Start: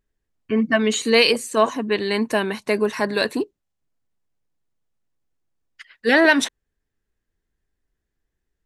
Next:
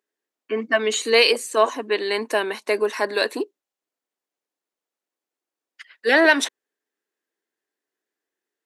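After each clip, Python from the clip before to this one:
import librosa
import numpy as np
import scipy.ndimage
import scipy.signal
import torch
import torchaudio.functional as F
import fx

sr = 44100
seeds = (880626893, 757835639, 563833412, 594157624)

y = scipy.signal.sosfilt(scipy.signal.butter(4, 310.0, 'highpass', fs=sr, output='sos'), x)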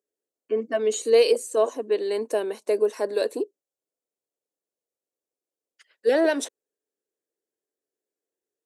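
y = fx.graphic_eq_10(x, sr, hz=(125, 500, 1000, 2000, 4000, 8000), db=(4, 10, -5, -8, -4, 5))
y = y * 10.0 ** (-7.0 / 20.0)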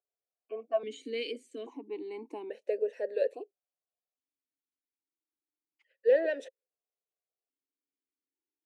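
y = fx.vowel_held(x, sr, hz=1.2)
y = y * 10.0 ** (1.5 / 20.0)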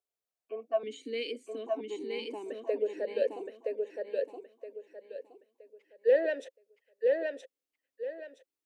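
y = fx.echo_feedback(x, sr, ms=970, feedback_pct=29, wet_db=-3)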